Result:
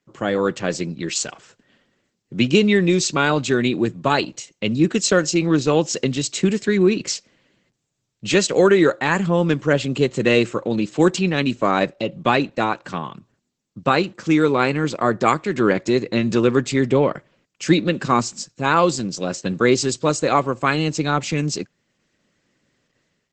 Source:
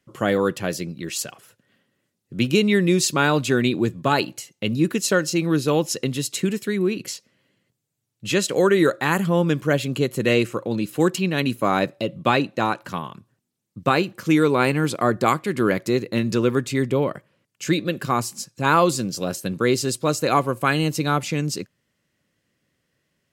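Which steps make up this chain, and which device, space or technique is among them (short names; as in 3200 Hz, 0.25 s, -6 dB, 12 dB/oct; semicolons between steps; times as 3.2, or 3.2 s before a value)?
17.68–18.52 dynamic EQ 220 Hz, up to +5 dB, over -36 dBFS, Q 2.2; video call (HPF 120 Hz 12 dB/oct; AGC gain up to 8 dB; gain -1 dB; Opus 12 kbps 48000 Hz)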